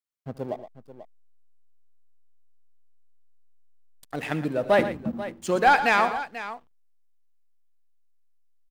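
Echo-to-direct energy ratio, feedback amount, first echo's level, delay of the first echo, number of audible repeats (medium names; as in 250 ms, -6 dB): -9.0 dB, no regular repeats, -17.5 dB, 75 ms, 3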